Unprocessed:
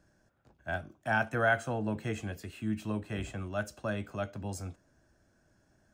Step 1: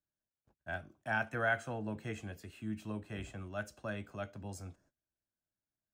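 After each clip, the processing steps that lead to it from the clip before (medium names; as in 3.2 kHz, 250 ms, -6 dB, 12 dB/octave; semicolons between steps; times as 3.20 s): gate -60 dBFS, range -24 dB; dynamic bell 2.1 kHz, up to +4 dB, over -44 dBFS, Q 1.3; trim -6.5 dB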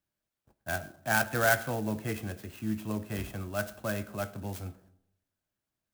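reverberation RT60 0.75 s, pre-delay 5 ms, DRR 15 dB; sampling jitter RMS 0.048 ms; trim +7 dB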